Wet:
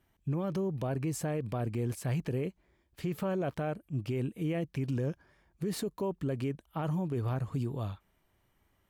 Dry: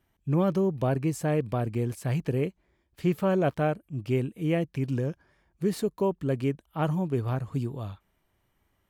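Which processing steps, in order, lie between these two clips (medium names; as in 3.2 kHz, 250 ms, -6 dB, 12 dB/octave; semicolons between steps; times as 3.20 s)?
peak limiter -25.5 dBFS, peak gain reduction 11 dB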